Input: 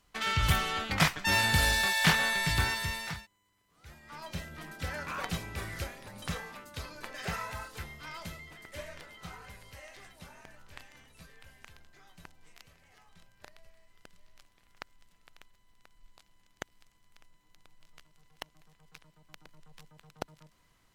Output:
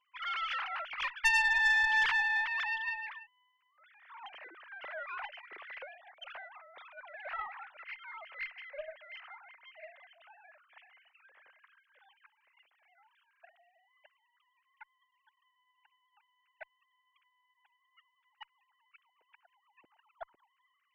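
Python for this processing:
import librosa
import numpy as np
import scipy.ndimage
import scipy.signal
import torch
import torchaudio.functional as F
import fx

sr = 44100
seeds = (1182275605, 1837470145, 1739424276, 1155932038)

y = fx.sine_speech(x, sr)
y = fx.tube_stage(y, sr, drive_db=21.0, bias=0.5)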